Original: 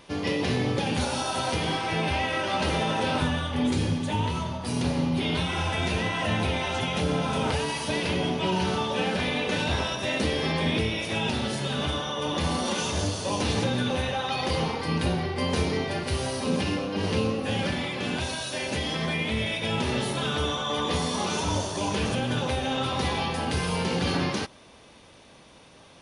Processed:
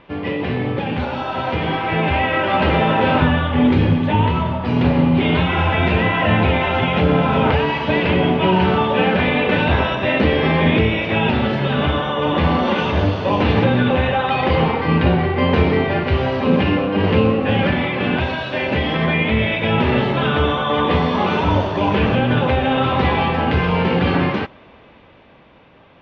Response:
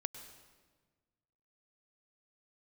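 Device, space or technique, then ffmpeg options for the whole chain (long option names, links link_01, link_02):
action camera in a waterproof case: -af "lowpass=frequency=2800:width=0.5412,lowpass=frequency=2800:width=1.3066,dynaudnorm=framelen=290:gausssize=13:maxgain=6.5dB,volume=4.5dB" -ar 22050 -c:a aac -b:a 96k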